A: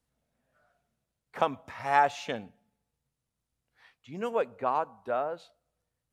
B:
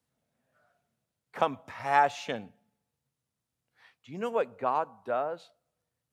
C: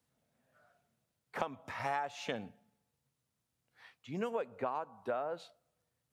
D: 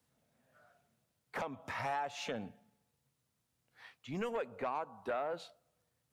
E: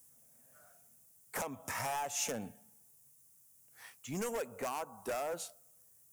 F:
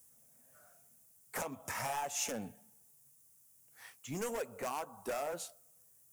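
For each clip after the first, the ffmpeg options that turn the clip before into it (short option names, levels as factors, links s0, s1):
-af "highpass=f=81:w=0.5412,highpass=f=81:w=1.3066"
-af "acompressor=threshold=0.0224:ratio=16,volume=1.12"
-filter_complex "[0:a]acrossover=split=1100[s0][s1];[s0]asoftclip=type=tanh:threshold=0.0168[s2];[s1]alimiter=level_in=3.35:limit=0.0631:level=0:latency=1:release=221,volume=0.299[s3];[s2][s3]amix=inputs=2:normalize=0,volume=1.33"
-af "volume=53.1,asoftclip=hard,volume=0.0188,aexciter=amount=10.8:drive=3.5:freq=5900,volume=1.12"
-filter_complex "[0:a]flanger=delay=1.4:depth=6.6:regen=-57:speed=1.8:shape=triangular,asplit=2[s0][s1];[s1]acrusher=bits=4:mode=log:mix=0:aa=0.000001,volume=0.501[s2];[s0][s2]amix=inputs=2:normalize=0"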